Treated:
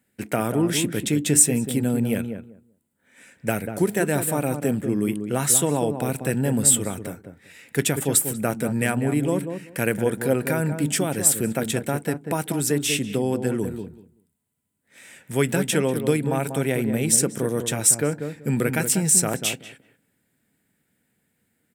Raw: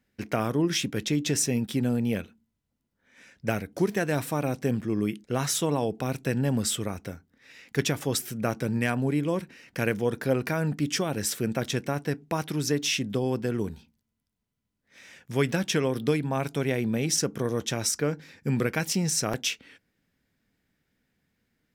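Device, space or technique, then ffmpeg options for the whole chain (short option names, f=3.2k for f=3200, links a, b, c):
budget condenser microphone: -filter_complex "[0:a]asettb=1/sr,asplit=3[a][b][c];[a]atrim=end=13.184[d];[b]atrim=start=13.18:end=13.65,asetpts=PTS-STARTPTS,afade=t=in:d=0.004:c=qsin,afade=t=out:st=0.466:d=0.004:c=qsin,lowpass=12k[e];[c]atrim=start=13.646[f];[d][e]acrossfade=d=0.004:c1=hsin:c2=qsin[g];[g][f]acrossfade=d=0.004:c1=qsin:c2=hsin,highpass=97,highshelf=f=6.9k:t=q:w=3:g=6.5,bandreject=f=1.1k:w=10,asplit=2[h][i];[i]adelay=191,lowpass=f=920:p=1,volume=-6.5dB,asplit=2[j][k];[k]adelay=191,lowpass=f=920:p=1,volume=0.18,asplit=2[l][m];[m]adelay=191,lowpass=f=920:p=1,volume=0.18[n];[h][j][l][n]amix=inputs=4:normalize=0,volume=3.5dB"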